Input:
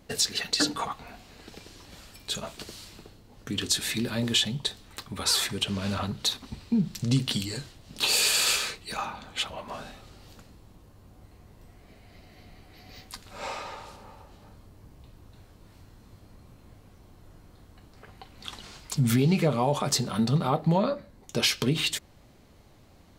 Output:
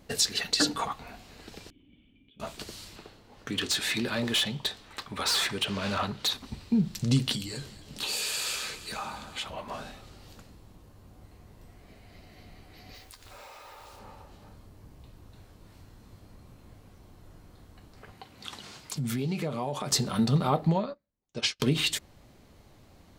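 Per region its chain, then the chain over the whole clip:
1.7–2.4 compressor, threshold -42 dBFS + dynamic EQ 3300 Hz, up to +4 dB, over -55 dBFS, Q 1.5 + vocal tract filter i
2.96–6.33 overdrive pedal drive 10 dB, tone 3000 Hz, clips at -10 dBFS + overloaded stage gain 22.5 dB
7.35–9.47 compressor 2:1, threshold -35 dBFS + doubler 14 ms -13.5 dB + echo with dull and thin repeats by turns 0.116 s, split 1200 Hz, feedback 77%, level -13 dB
12.94–13.99 bell 180 Hz -12.5 dB 0.8 oct + compressor 16:1, threshold -44 dBFS + modulation noise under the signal 14 dB
18.12–19.92 HPF 100 Hz + compressor 2:1, threshold -33 dBFS
20.67–21.6 LPF 8200 Hz 24 dB/oct + upward expander 2.5:1, over -43 dBFS
whole clip: dry

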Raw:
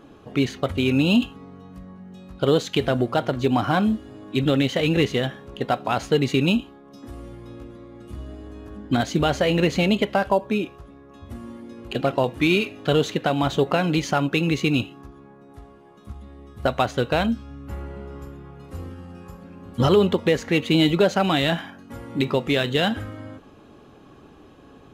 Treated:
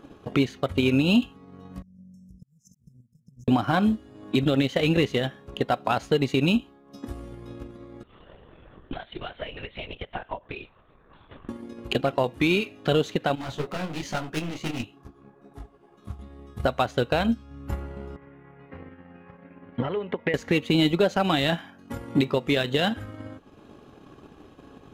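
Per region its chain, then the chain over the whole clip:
1.82–3.48 flipped gate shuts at -17 dBFS, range -25 dB + compressor 16:1, threshold -43 dBFS + brick-wall FIR band-stop 240–5100 Hz
8.03–11.49 HPF 1000 Hz 6 dB/oct + compressor 2.5:1, threshold -38 dBFS + LPC vocoder at 8 kHz whisper
13.35–16.19 hard clip -25 dBFS + detuned doubles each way 45 cents
18.16–20.34 compressor, threshold -20 dBFS + speaker cabinet 190–2400 Hz, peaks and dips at 210 Hz -8 dB, 350 Hz -8 dB, 520 Hz -3 dB, 770 Hz -3 dB, 1200 Hz -7 dB, 2000 Hz +7 dB
whole clip: transient shaper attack +9 dB, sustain -6 dB; limiter -9.5 dBFS; gain -1.5 dB

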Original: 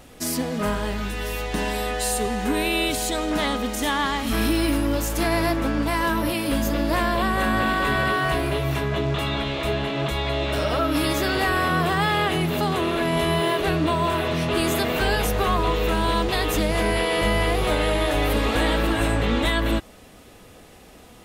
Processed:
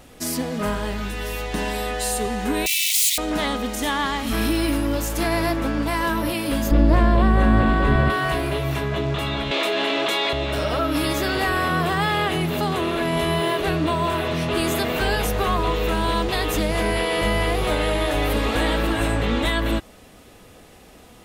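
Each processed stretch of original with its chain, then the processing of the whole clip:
2.66–3.18 infinite clipping + steep high-pass 2000 Hz 96 dB/oct + high shelf 3000 Hz +8.5 dB
6.71–8.1 LPF 11000 Hz + tilt -3 dB/oct
9.51–10.33 HPF 260 Hz 24 dB/oct + bell 4000 Hz +4.5 dB 2.5 oct + fast leveller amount 100%
whole clip: dry

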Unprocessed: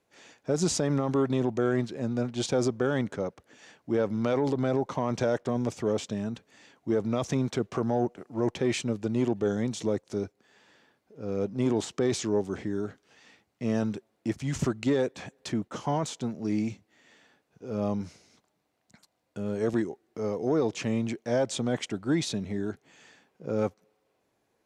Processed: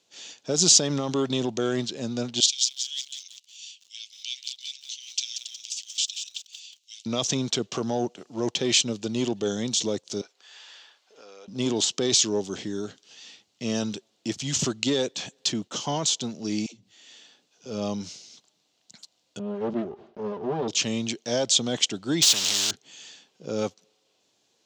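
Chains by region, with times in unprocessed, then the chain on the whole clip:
2.4–7.06 steep high-pass 2500 Hz 48 dB/oct + lo-fi delay 0.182 s, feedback 55%, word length 9-bit, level -7 dB
10.21–11.48 HPF 590 Hz + bell 1400 Hz +8.5 dB 2.5 oct + compressor 5:1, threshold -46 dBFS
16.66–17.66 HPF 160 Hz 6 dB/oct + dispersion lows, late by 90 ms, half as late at 380 Hz + compressor 3:1, threshold -53 dBFS
19.39–20.68 minimum comb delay 5 ms + LPF 1200 Hz + sustainer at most 110 dB/s
22.22–22.71 zero-crossing step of -41 dBFS + spectral compressor 4:1
whole clip: HPF 120 Hz; band shelf 4600 Hz +15.5 dB

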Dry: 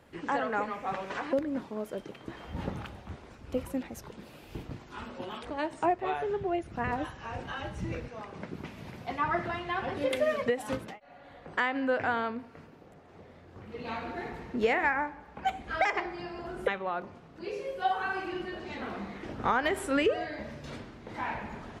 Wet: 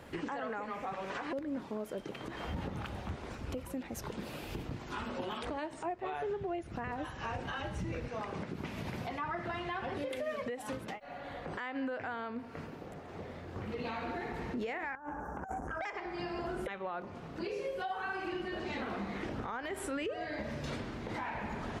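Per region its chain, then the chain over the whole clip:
14.95–15.81 Chebyshev band-stop 1600–5800 Hz, order 4 + negative-ratio compressor -41 dBFS + core saturation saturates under 610 Hz
whole clip: compressor 4:1, threshold -43 dBFS; limiter -36.5 dBFS; gain +7.5 dB

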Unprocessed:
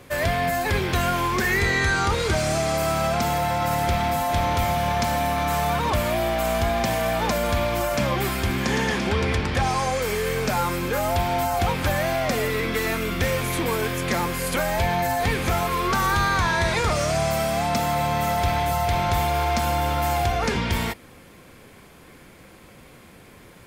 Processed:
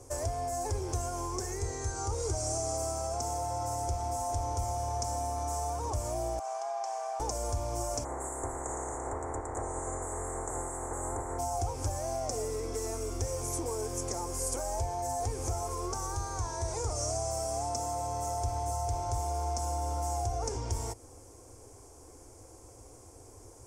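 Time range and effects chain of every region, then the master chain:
6.39–7.2 HPF 750 Hz 24 dB/oct + tape spacing loss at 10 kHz 20 dB + comb 2.6 ms, depth 34%
8.03–11.38 spectral limiter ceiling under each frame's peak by 23 dB + Chebyshev band-stop 2000–7300 Hz, order 4 + air absorption 86 m
whole clip: bell 580 Hz -5.5 dB 0.21 oct; compressor, threshold -27 dBFS; EQ curve 110 Hz 0 dB, 180 Hz -28 dB, 280 Hz -5 dB, 450 Hz -2 dB, 850 Hz -3 dB, 1800 Hz -22 dB, 3900 Hz -21 dB, 5700 Hz +5 dB, 8500 Hz +5 dB, 14000 Hz -14 dB

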